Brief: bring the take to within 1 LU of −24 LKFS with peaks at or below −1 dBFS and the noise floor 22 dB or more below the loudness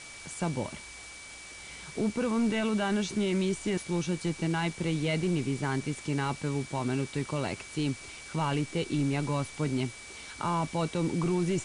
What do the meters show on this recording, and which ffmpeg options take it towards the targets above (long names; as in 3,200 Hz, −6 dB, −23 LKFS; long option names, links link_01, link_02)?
interfering tone 2,300 Hz; level of the tone −47 dBFS; background noise floor −46 dBFS; target noise floor −53 dBFS; integrated loudness −31.0 LKFS; sample peak −20.0 dBFS; target loudness −24.0 LKFS
→ -af "bandreject=frequency=2300:width=30"
-af "afftdn=noise_reduction=7:noise_floor=-46"
-af "volume=7dB"